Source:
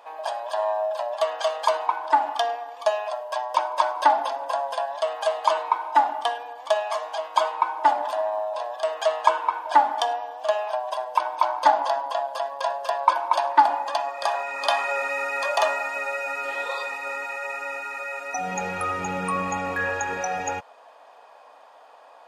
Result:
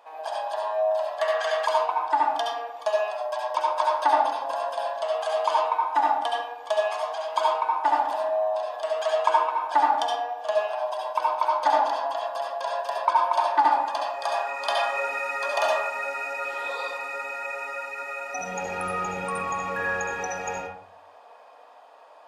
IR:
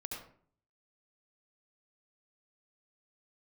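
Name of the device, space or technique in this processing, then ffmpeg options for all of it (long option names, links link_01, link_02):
bathroom: -filter_complex "[1:a]atrim=start_sample=2205[link_01];[0:a][link_01]afir=irnorm=-1:irlink=0,asettb=1/sr,asplit=3[link_02][link_03][link_04];[link_02]atrim=end=1.194[link_05];[link_03]atrim=start=1.19:end=1.67,asetpts=PTS-STARTPTS,afade=type=in:duration=0.004:curve=qsin,afade=type=out:start_time=0.476:duration=0.004:curve=qsin,equalizer=frequency=1800:width=3:gain=13.5[link_06];[link_04]atrim=start=1.666[link_07];[link_05][link_06]acrossfade=duration=0.004:curve1=hsin:curve2=qsin[link_08];[link_08][link_07]acrossfade=duration=0.004:curve1=qsin:curve2=hsin"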